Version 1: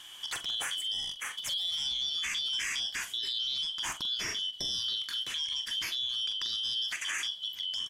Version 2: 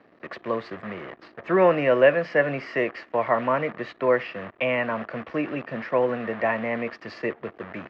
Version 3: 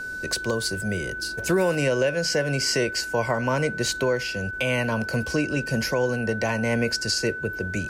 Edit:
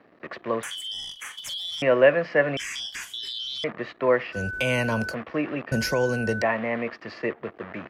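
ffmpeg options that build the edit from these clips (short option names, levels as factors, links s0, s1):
-filter_complex "[0:a]asplit=2[s0][s1];[2:a]asplit=2[s2][s3];[1:a]asplit=5[s4][s5][s6][s7][s8];[s4]atrim=end=0.632[s9];[s0]atrim=start=0.628:end=1.822[s10];[s5]atrim=start=1.818:end=2.572[s11];[s1]atrim=start=2.568:end=3.642[s12];[s6]atrim=start=3.638:end=4.38[s13];[s2]atrim=start=4.32:end=5.15[s14];[s7]atrim=start=5.09:end=5.722[s15];[s3]atrim=start=5.718:end=6.422[s16];[s8]atrim=start=6.418[s17];[s9][s10]acrossfade=d=0.004:c1=hsin:c2=hsin[s18];[s18][s11]acrossfade=d=0.004:c1=hsin:c2=hsin[s19];[s19][s12]acrossfade=d=0.004:c1=hsin:c2=hsin[s20];[s20][s13]acrossfade=d=0.004:c1=hsin:c2=hsin[s21];[s21][s14]acrossfade=d=0.06:c1=tri:c2=tri[s22];[s22][s15]acrossfade=d=0.06:c1=tri:c2=tri[s23];[s23][s16]acrossfade=d=0.004:c1=hsin:c2=hsin[s24];[s24][s17]acrossfade=d=0.004:c1=hsin:c2=hsin"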